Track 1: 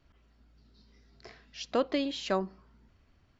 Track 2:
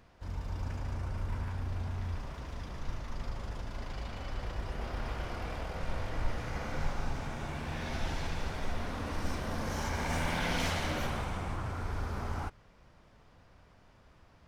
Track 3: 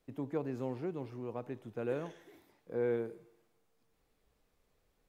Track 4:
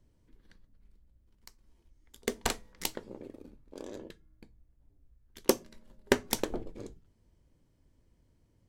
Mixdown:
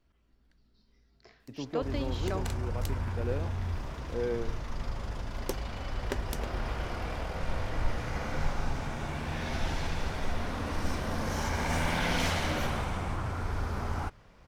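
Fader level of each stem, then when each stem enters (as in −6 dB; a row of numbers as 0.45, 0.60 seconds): −7.0, +3.0, +0.5, −10.5 decibels; 0.00, 1.60, 1.40, 0.00 seconds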